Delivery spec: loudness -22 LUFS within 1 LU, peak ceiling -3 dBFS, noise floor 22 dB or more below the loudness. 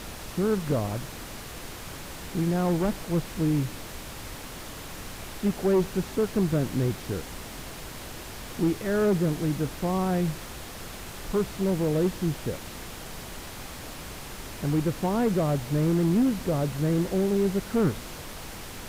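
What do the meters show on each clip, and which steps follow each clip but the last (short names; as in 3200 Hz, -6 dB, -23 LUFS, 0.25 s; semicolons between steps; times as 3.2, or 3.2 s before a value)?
clipped 0.9%; flat tops at -17.5 dBFS; noise floor -40 dBFS; noise floor target -49 dBFS; loudness -27.0 LUFS; peak -17.5 dBFS; loudness target -22.0 LUFS
-> clip repair -17.5 dBFS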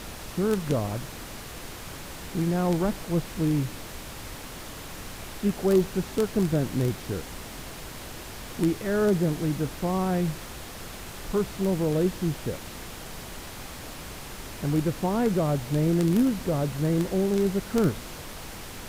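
clipped 0.0%; noise floor -40 dBFS; noise floor target -49 dBFS
-> noise print and reduce 9 dB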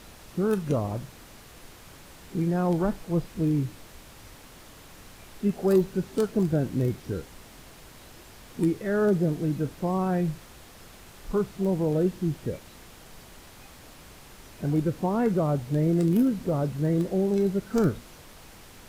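noise floor -49 dBFS; loudness -26.5 LUFS; peak -10.5 dBFS; loudness target -22.0 LUFS
-> gain +4.5 dB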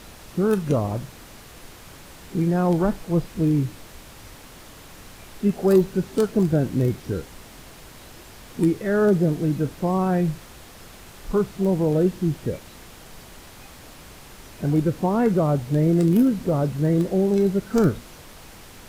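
loudness -22.0 LUFS; peak -6.0 dBFS; noise floor -45 dBFS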